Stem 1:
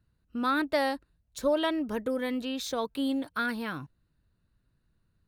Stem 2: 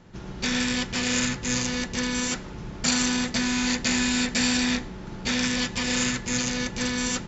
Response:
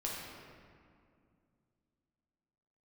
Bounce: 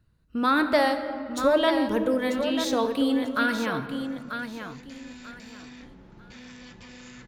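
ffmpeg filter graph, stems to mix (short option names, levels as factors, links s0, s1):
-filter_complex "[0:a]highshelf=f=9800:g=-4.5,volume=1.33,asplit=4[s0][s1][s2][s3];[s1]volume=0.501[s4];[s2]volume=0.531[s5];[1:a]lowpass=f=3000:p=1,alimiter=level_in=1.12:limit=0.0631:level=0:latency=1:release=18,volume=0.891,adelay=1050,volume=0.237[s6];[s3]apad=whole_len=367194[s7];[s6][s7]sidechaincompress=threshold=0.00501:ratio=8:attack=16:release=936[s8];[2:a]atrim=start_sample=2205[s9];[s4][s9]afir=irnorm=-1:irlink=0[s10];[s5]aecho=0:1:941|1882|2823|3764:1|0.25|0.0625|0.0156[s11];[s0][s8][s10][s11]amix=inputs=4:normalize=0"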